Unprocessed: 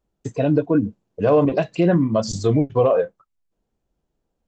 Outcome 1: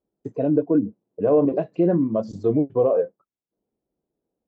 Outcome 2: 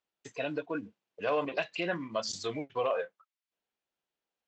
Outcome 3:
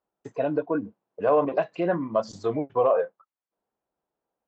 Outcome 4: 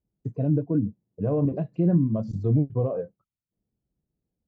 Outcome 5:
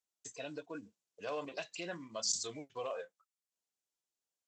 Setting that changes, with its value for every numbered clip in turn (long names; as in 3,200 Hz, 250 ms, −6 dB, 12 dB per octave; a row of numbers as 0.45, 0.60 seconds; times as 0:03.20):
resonant band-pass, frequency: 360, 2,700, 990, 130, 7,500 Hertz